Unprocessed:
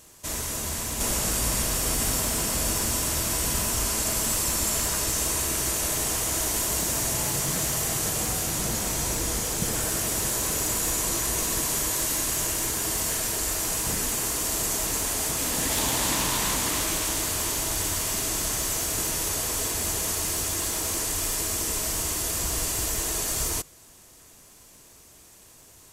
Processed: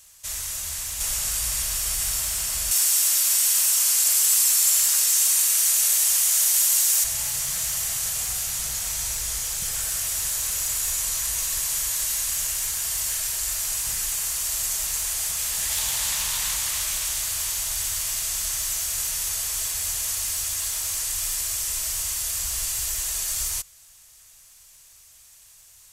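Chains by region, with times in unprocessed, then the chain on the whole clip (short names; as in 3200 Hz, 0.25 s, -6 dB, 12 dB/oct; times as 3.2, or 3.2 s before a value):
2.71–7.04 HPF 300 Hz 24 dB/oct + tilt +2 dB/oct
whole clip: passive tone stack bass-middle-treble 10-0-10; notch 1000 Hz, Q 23; gain +2 dB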